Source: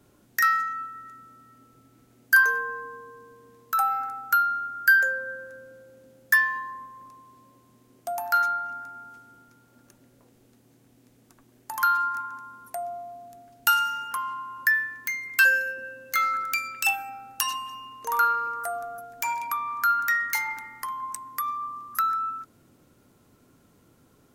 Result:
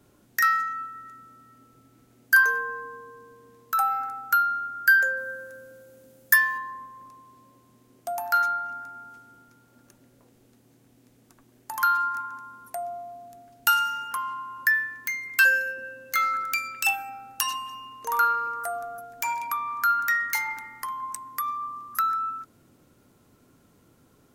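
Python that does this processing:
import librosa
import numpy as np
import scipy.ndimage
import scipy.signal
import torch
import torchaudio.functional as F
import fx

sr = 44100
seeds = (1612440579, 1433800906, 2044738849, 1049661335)

y = fx.high_shelf(x, sr, hz=7300.0, db=10.5, at=(5.17, 6.58))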